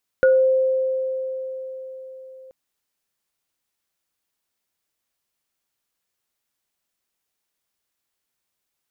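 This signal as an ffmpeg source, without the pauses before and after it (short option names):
-f lavfi -i "aevalsrc='0.282*pow(10,-3*t/4.56)*sin(2*PI*523*t)+0.133*pow(10,-3*t/0.28)*sin(2*PI*1450*t)':d=2.28:s=44100"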